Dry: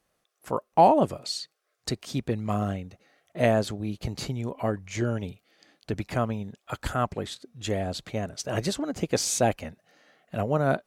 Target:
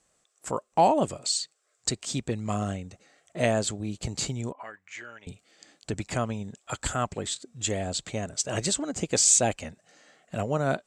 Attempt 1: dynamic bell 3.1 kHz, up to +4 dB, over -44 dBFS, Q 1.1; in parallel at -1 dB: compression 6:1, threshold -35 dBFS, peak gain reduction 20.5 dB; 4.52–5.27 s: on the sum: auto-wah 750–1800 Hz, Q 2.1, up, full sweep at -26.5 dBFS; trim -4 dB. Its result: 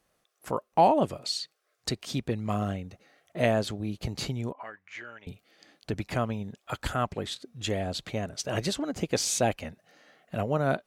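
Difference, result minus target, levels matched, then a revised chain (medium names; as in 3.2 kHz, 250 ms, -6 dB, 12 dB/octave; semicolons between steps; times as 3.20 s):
8 kHz band -8.0 dB
dynamic bell 3.1 kHz, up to +4 dB, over -44 dBFS, Q 1.1; resonant low-pass 7.7 kHz, resonance Q 7.2; in parallel at -1 dB: compression 6:1, threshold -35 dBFS, peak gain reduction 20.5 dB; 4.52–5.27 s: on the sum: auto-wah 750–1800 Hz, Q 2.1, up, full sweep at -26.5 dBFS; trim -4 dB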